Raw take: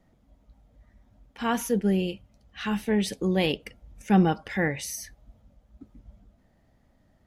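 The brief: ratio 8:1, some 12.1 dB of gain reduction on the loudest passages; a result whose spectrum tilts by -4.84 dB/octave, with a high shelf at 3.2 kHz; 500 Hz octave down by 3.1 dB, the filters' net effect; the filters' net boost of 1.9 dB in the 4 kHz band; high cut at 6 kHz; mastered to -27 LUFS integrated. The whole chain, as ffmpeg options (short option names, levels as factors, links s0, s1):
-af "lowpass=6000,equalizer=f=500:t=o:g=-4,highshelf=f=3200:g=-5.5,equalizer=f=4000:t=o:g=7.5,acompressor=threshold=0.0398:ratio=8,volume=2.37"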